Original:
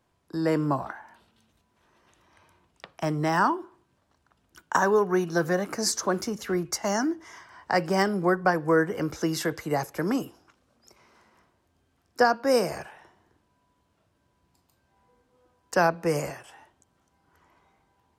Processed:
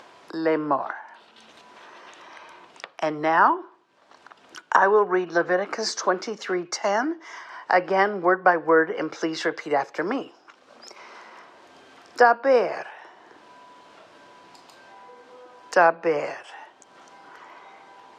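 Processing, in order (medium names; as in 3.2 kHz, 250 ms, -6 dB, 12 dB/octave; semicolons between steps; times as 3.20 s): low-pass 5.1 kHz 12 dB/octave; low-pass that closes with the level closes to 2.7 kHz, closed at -21 dBFS; high-pass 430 Hz 12 dB/octave; upward compressor, threshold -39 dBFS; trim +6 dB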